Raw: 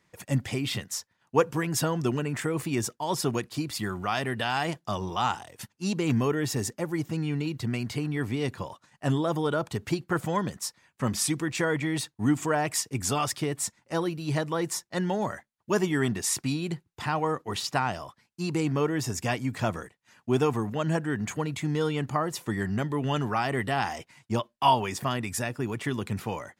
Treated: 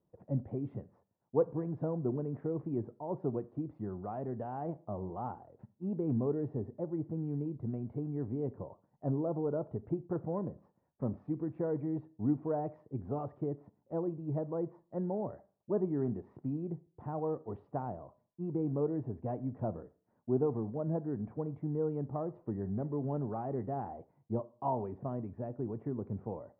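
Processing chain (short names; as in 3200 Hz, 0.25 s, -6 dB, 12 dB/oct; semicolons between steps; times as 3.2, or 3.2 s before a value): ladder low-pass 800 Hz, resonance 25%; Schroeder reverb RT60 0.43 s, combs from 28 ms, DRR 17 dB; gain -1.5 dB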